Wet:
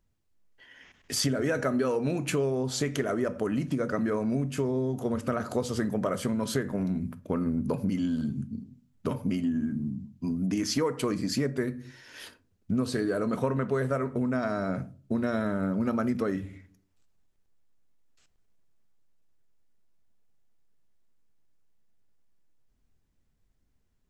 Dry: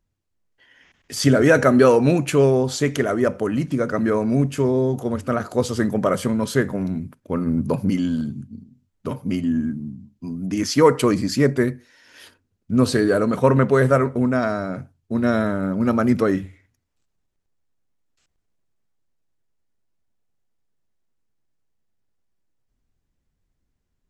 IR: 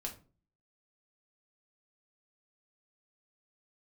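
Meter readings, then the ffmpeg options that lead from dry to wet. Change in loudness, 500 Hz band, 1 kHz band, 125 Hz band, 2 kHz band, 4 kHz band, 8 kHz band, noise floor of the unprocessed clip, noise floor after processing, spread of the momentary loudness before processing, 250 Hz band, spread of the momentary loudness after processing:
-9.5 dB, -10.5 dB, -10.5 dB, -9.5 dB, -10.5 dB, -5.5 dB, -5.0 dB, -74 dBFS, -71 dBFS, 13 LU, -8.0 dB, 7 LU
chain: -filter_complex "[0:a]asplit=2[s0][s1];[1:a]atrim=start_sample=2205[s2];[s1][s2]afir=irnorm=-1:irlink=0,volume=0.398[s3];[s0][s3]amix=inputs=2:normalize=0,acompressor=threshold=0.0631:ratio=6,volume=0.841"

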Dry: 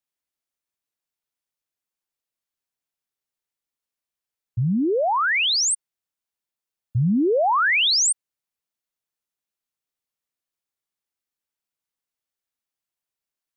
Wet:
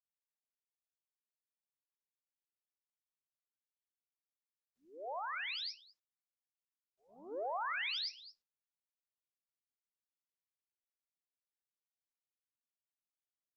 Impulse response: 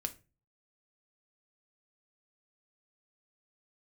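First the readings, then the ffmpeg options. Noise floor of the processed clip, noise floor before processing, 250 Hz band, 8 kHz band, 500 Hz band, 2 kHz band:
under -85 dBFS, under -85 dBFS, -37.0 dB, under -40 dB, -22.0 dB, -19.5 dB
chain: -filter_complex "[0:a]agate=range=0.0224:threshold=0.158:ratio=16:detection=peak,aresample=11025,aresample=44100,highpass=f=670:w=0.5412,highpass=f=670:w=1.3066,asplit=2[s0][s1];[s1]adelay=221.6,volume=0.0794,highshelf=f=4000:g=-4.99[s2];[s0][s2]amix=inputs=2:normalize=0,asplit=2[s3][s4];[1:a]atrim=start_sample=2205,afade=t=out:st=0.44:d=0.01,atrim=end_sample=19845,adelay=109[s5];[s4][s5]afir=irnorm=-1:irlink=0,volume=1.78[s6];[s3][s6]amix=inputs=2:normalize=0,afftdn=nr=32:nf=-68,acompressor=threshold=0.00282:ratio=4,volume=4.22" -ar 48000 -c:a libopus -b:a 24k

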